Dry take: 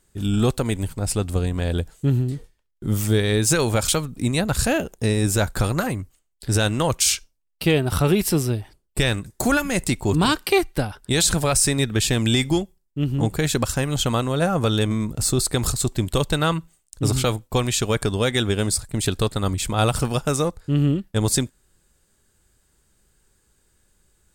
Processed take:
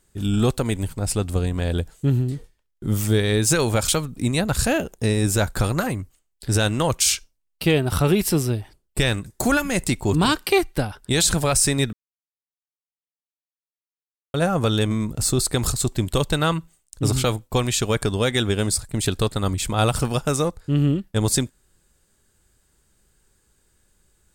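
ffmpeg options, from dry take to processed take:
ffmpeg -i in.wav -filter_complex "[0:a]asplit=3[link_01][link_02][link_03];[link_01]atrim=end=11.93,asetpts=PTS-STARTPTS,afade=type=out:start_time=11.926:duration=0.004:curve=hsin[link_04];[link_02]atrim=start=11.93:end=14.34,asetpts=PTS-STARTPTS,volume=0[link_05];[link_03]atrim=start=14.34,asetpts=PTS-STARTPTS,afade=type=in:duration=0.004:curve=hsin[link_06];[link_04][link_05][link_06]concat=n=3:v=0:a=1" out.wav

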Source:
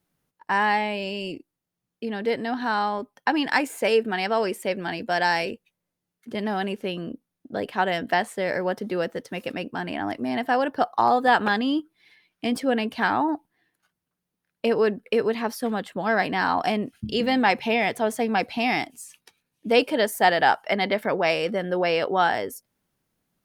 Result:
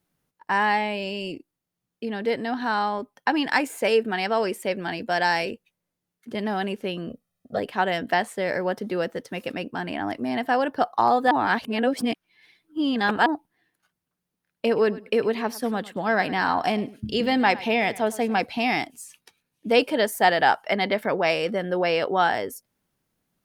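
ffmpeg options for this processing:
ffmpeg -i in.wav -filter_complex "[0:a]asettb=1/sr,asplit=3[link_01][link_02][link_03];[link_01]atrim=end=7.094[link_04];[link_02]atrim=start=7.09:end=7.59,asetpts=PTS-STARTPTS,afade=type=in:duration=0.004:curve=qsin,afade=type=out:start_time=0.496:duration=0.004:curve=qsin,aecho=1:1:1.6:0.87,atrim=end_sample=22050[link_05];[link_03]atrim=start=7.586[link_06];[link_04][link_05]acrossfade=duration=0.004:curve1=hsin:curve2=qsin[link_07];[link_07][link_06]acrossfade=duration=0.004:curve1=qsin:curve2=hsin,asettb=1/sr,asplit=3[link_08][link_09][link_10];[link_08]atrim=end=14.664[link_11];[link_09]atrim=start=14.66:end=18.45,asetpts=PTS-STARTPTS,afade=type=in:duration=0.004:curve=qsin,afade=type=out:start_time=3.786:duration=0.004:curve=qsin,aecho=1:1:105|210:0.119|0.019,atrim=end_sample=167139[link_12];[link_10]atrim=start=18.446[link_13];[link_11][link_12]acrossfade=duration=0.004:curve1=hsin:curve2=qsin[link_14];[link_14][link_13]acrossfade=duration=0.004:curve1=qsin:curve2=hsin,asplit=3[link_15][link_16][link_17];[link_15]atrim=end=11.312[link_18];[link_16]atrim=start=11.308:end=13.262,asetpts=PTS-STARTPTS,areverse[link_19];[link_17]atrim=start=13.258[link_20];[link_18][link_19]acrossfade=duration=0.004:curve1=hsin:curve2=hsin[link_21];[link_21][link_20]acrossfade=duration=0.004:curve1=hsin:curve2=hsin" out.wav

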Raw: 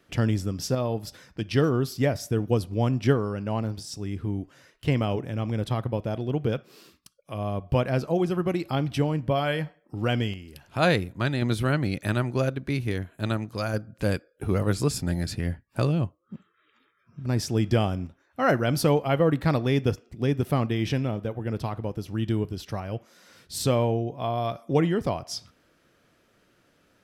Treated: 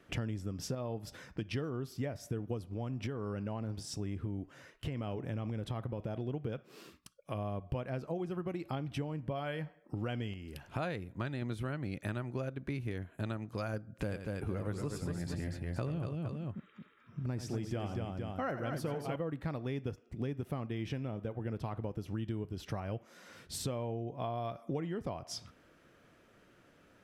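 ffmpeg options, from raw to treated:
ffmpeg -i in.wav -filter_complex "[0:a]asettb=1/sr,asplit=3[link_01][link_02][link_03];[link_01]atrim=end=2.674[link_04];[link_02]atrim=start=2.67:end=6.2,asetpts=PTS-STARTPTS,afade=type=in:duration=0.004:curve=qsin,afade=type=out:start_time=3.526:duration=0.004:curve=qsin,acompressor=threshold=-26dB:ratio=6:attack=3.2:release=140:knee=1:detection=peak[link_05];[link_03]atrim=start=6.196[link_06];[link_04][link_05]acrossfade=duration=0.004:curve1=hsin:curve2=qsin[link_07];[link_07][link_06]acrossfade=duration=0.004:curve1=qsin:curve2=hsin,asettb=1/sr,asplit=3[link_08][link_09][link_10];[link_08]atrim=end=13.934[link_11];[link_09]atrim=start=13.93:end=19.16,asetpts=PTS-STARTPTS,afade=type=in:duration=0.004:curve=qsin,afade=type=out:start_time=5.226:duration=0.004:curve=qsin,aecho=1:1:87|238|463:0.282|0.531|0.237,atrim=end_sample=230643[link_12];[link_10]atrim=start=19.156[link_13];[link_11][link_12]acrossfade=duration=0.004:curve1=hsin:curve2=qsin[link_14];[link_14][link_13]acrossfade=duration=0.004:curve1=qsin:curve2=hsin,equalizer=frequency=4500:width_type=o:width=0.89:gain=-5,acompressor=threshold=-36dB:ratio=6,highshelf=frequency=9400:gain=-9.5,volume=1dB" out.wav

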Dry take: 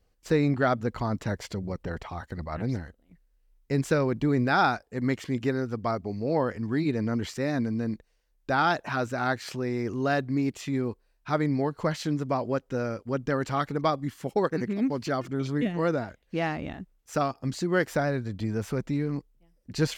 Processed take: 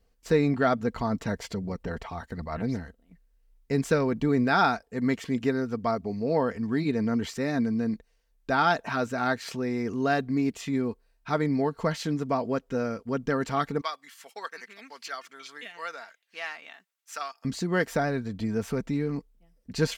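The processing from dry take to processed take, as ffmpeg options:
ffmpeg -i in.wav -filter_complex "[0:a]asettb=1/sr,asplit=3[link_01][link_02][link_03];[link_01]atrim=end=13.814[link_04];[link_02]atrim=start=13.81:end=17.45,asetpts=PTS-STARTPTS,afade=type=in:duration=0.004:curve=qsin,afade=type=out:start_time=3.636:duration=0.004:curve=qsin,highpass=1400[link_05];[link_03]atrim=start=17.446[link_06];[link_04][link_05]acrossfade=duration=0.004:curve1=hsin:curve2=qsin[link_07];[link_07][link_06]acrossfade=duration=0.004:curve1=qsin:curve2=hsin,aecho=1:1:4.4:0.38" out.wav

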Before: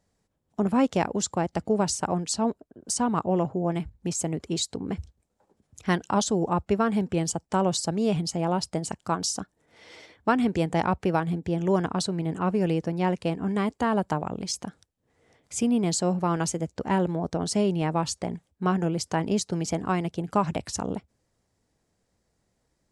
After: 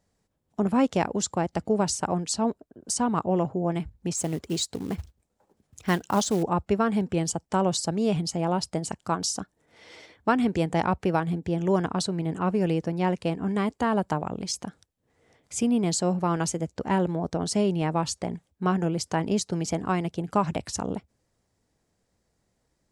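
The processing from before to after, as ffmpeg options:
ffmpeg -i in.wav -filter_complex "[0:a]asettb=1/sr,asplit=3[link_01][link_02][link_03];[link_01]atrim=end=4.174[link_04];[link_02]atrim=start=4.17:end=6.43,asetpts=PTS-STARTPTS,afade=type=in:duration=0.004:curve=qsin,afade=type=out:start_time=2.256:duration=0.004:curve=qsin,acrusher=bits=5:mode=log:mix=0:aa=0.000001[link_05];[link_03]atrim=start=6.426[link_06];[link_04][link_05]acrossfade=duration=0.004:curve1=hsin:curve2=qsin[link_07];[link_07][link_06]acrossfade=duration=0.004:curve1=qsin:curve2=hsin" out.wav

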